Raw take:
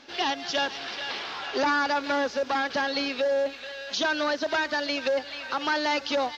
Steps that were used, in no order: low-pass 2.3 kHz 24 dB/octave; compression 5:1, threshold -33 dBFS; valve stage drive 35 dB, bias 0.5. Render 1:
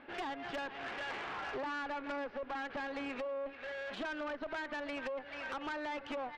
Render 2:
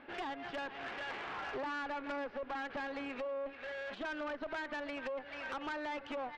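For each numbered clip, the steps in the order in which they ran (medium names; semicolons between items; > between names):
low-pass > compression > valve stage; compression > low-pass > valve stage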